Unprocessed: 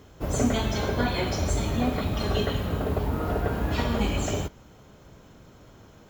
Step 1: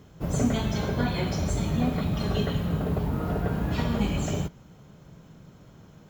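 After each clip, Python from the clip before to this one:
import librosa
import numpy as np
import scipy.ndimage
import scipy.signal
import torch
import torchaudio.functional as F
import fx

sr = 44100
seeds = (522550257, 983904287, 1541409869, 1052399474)

y = fx.peak_eq(x, sr, hz=160.0, db=11.5, octaves=0.71)
y = y * librosa.db_to_amplitude(-3.5)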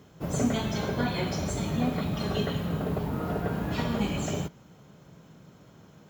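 y = fx.highpass(x, sr, hz=150.0, slope=6)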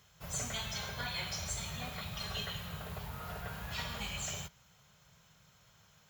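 y = fx.tone_stack(x, sr, knobs='10-0-10')
y = y * librosa.db_to_amplitude(1.0)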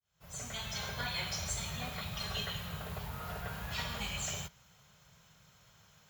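y = fx.fade_in_head(x, sr, length_s=0.87)
y = y * librosa.db_to_amplitude(1.5)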